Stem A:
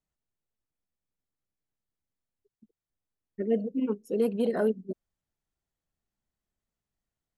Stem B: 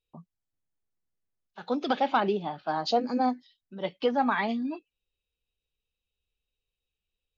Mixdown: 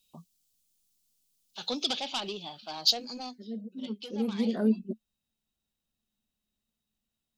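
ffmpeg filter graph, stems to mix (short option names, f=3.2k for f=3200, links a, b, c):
-filter_complex "[0:a]equalizer=f=220:t=o:w=0.36:g=13,volume=-1.5dB[a];[1:a]asoftclip=type=tanh:threshold=-20.5dB,aexciter=amount=13.5:drive=2.1:freq=2.7k,volume=-2dB,afade=t=out:st=1.54:d=0.48:silence=0.398107,afade=t=out:st=2.91:d=0.63:silence=0.354813,asplit=2[b][c];[c]apad=whole_len=325368[d];[a][d]sidechaincompress=threshold=-41dB:ratio=16:attack=5.1:release=1300[e];[e][b]amix=inputs=2:normalize=0"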